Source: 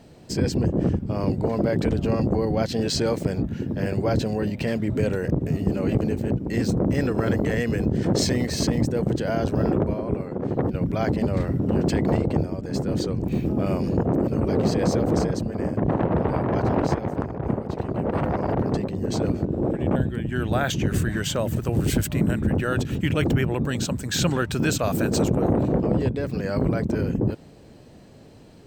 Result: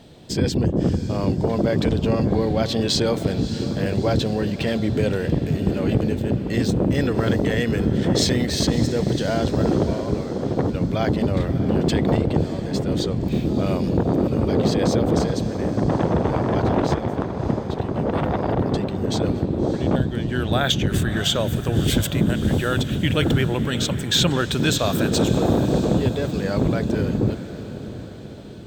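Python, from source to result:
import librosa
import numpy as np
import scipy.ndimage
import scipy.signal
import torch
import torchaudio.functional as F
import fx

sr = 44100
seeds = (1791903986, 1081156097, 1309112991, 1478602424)

y = fx.peak_eq(x, sr, hz=3500.0, db=12.0, octaves=0.32)
y = fx.echo_diffused(y, sr, ms=631, feedback_pct=53, wet_db=-12.5)
y = y * librosa.db_to_amplitude(2.0)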